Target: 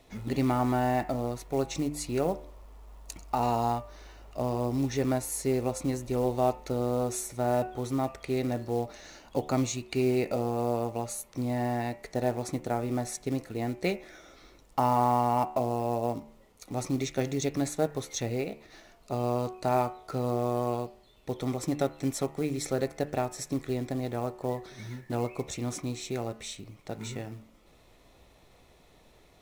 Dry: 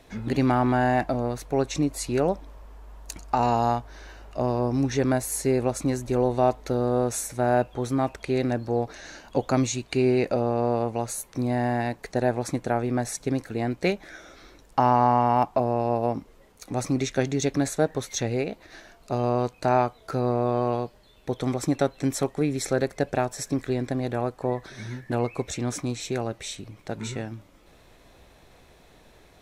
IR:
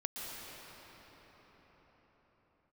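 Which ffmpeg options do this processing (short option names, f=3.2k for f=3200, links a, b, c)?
-af "acrusher=bits=6:mode=log:mix=0:aa=0.000001,bandreject=f=1.6k:w=7.1,bandreject=f=74.07:t=h:w=4,bandreject=f=148.14:t=h:w=4,bandreject=f=222.21:t=h:w=4,bandreject=f=296.28:t=h:w=4,bandreject=f=370.35:t=h:w=4,bandreject=f=444.42:t=h:w=4,bandreject=f=518.49:t=h:w=4,bandreject=f=592.56:t=h:w=4,bandreject=f=666.63:t=h:w=4,bandreject=f=740.7:t=h:w=4,bandreject=f=814.77:t=h:w=4,bandreject=f=888.84:t=h:w=4,bandreject=f=962.91:t=h:w=4,bandreject=f=1.03698k:t=h:w=4,bandreject=f=1.11105k:t=h:w=4,bandreject=f=1.18512k:t=h:w=4,bandreject=f=1.25919k:t=h:w=4,bandreject=f=1.33326k:t=h:w=4,bandreject=f=1.40733k:t=h:w=4,bandreject=f=1.4814k:t=h:w=4,bandreject=f=1.55547k:t=h:w=4,bandreject=f=1.62954k:t=h:w=4,bandreject=f=1.70361k:t=h:w=4,bandreject=f=1.77768k:t=h:w=4,bandreject=f=1.85175k:t=h:w=4,bandreject=f=1.92582k:t=h:w=4,bandreject=f=1.99989k:t=h:w=4,bandreject=f=2.07396k:t=h:w=4,bandreject=f=2.14803k:t=h:w=4,bandreject=f=2.2221k:t=h:w=4,bandreject=f=2.29617k:t=h:w=4,bandreject=f=2.37024k:t=h:w=4,bandreject=f=2.44431k:t=h:w=4,bandreject=f=2.51838k:t=h:w=4,bandreject=f=2.59245k:t=h:w=4,bandreject=f=2.66652k:t=h:w=4,bandreject=f=2.74059k:t=h:w=4,bandreject=f=2.81466k:t=h:w=4,volume=-4.5dB"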